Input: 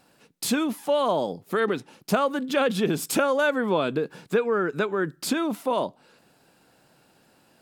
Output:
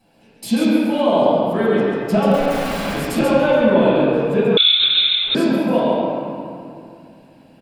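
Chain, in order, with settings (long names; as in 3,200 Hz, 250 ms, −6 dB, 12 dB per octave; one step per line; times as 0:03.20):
parametric band 1,300 Hz −10.5 dB 0.72 octaves
0:02.29–0:02.94: wrap-around overflow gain 28.5 dB
single-tap delay 137 ms −4 dB
convolution reverb RT60 2.4 s, pre-delay 5 ms, DRR −11.5 dB
0:04.57–0:05.35: voice inversion scrambler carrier 3,900 Hz
level −10 dB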